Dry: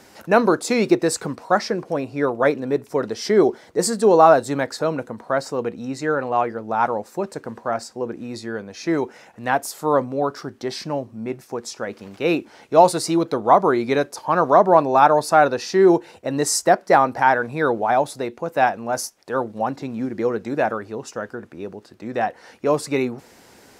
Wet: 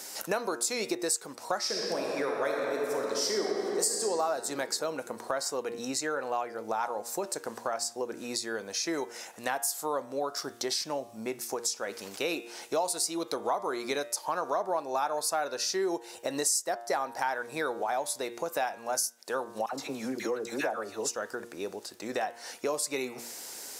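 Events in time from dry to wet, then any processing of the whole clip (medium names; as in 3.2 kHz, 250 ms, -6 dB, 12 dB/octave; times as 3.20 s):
1.60–3.92 s: reverb throw, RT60 2.7 s, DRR -1.5 dB
19.66–21.16 s: phase dispersion lows, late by 70 ms, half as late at 1.1 kHz
whole clip: tone controls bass -15 dB, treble +15 dB; de-hum 117.4 Hz, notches 32; compression 4:1, threshold -30 dBFS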